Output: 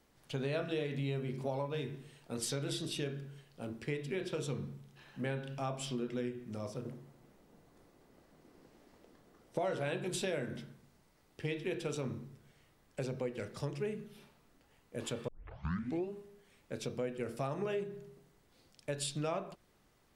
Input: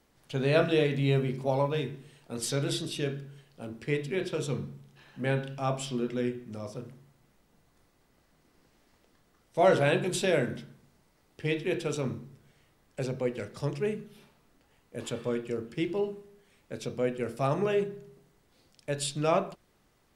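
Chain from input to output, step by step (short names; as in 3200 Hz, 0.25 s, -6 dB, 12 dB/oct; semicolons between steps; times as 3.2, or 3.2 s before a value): 6.85–9.59 bell 380 Hz +9 dB 2.7 oct; 15.28 tape start 0.83 s; compressor 4:1, threshold -32 dBFS, peak gain reduction 12.5 dB; gain -2 dB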